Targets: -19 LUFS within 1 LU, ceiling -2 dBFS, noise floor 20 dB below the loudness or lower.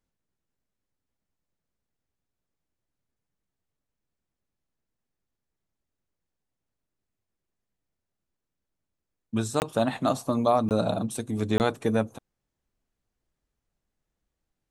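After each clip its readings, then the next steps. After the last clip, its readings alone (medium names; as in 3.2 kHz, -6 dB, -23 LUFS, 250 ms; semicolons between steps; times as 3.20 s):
dropouts 3; longest dropout 19 ms; loudness -27.0 LUFS; peak level -10.5 dBFS; loudness target -19.0 LUFS
-> interpolate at 9.60/10.69/11.58 s, 19 ms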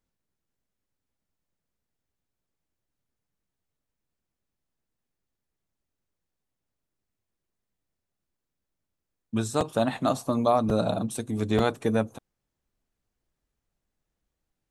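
dropouts 0; loudness -26.5 LUFS; peak level -10.5 dBFS; loudness target -19.0 LUFS
-> trim +7.5 dB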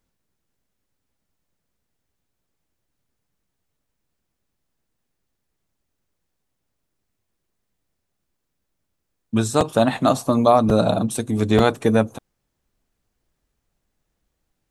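loudness -19.0 LUFS; peak level -3.0 dBFS; noise floor -77 dBFS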